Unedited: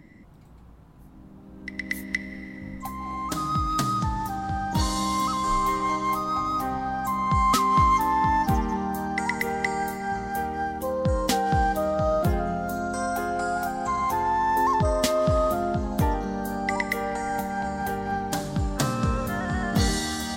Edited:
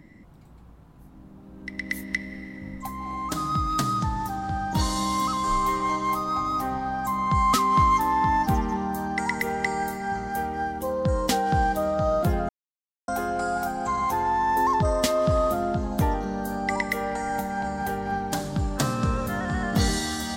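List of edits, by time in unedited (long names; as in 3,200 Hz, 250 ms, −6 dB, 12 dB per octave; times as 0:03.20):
0:12.49–0:13.08: silence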